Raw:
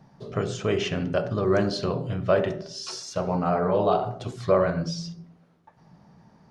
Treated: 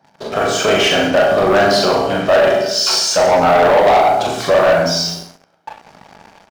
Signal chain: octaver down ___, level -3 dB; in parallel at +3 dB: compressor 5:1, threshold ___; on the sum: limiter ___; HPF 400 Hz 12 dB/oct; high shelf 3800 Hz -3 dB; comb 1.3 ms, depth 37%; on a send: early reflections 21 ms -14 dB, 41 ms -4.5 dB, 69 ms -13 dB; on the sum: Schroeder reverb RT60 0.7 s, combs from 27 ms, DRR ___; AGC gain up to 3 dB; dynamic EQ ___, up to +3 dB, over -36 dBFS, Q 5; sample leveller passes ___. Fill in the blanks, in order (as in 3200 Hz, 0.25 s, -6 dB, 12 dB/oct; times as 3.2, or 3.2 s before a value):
1 oct, -36 dBFS, -11.5 dBFS, 3.5 dB, 800 Hz, 3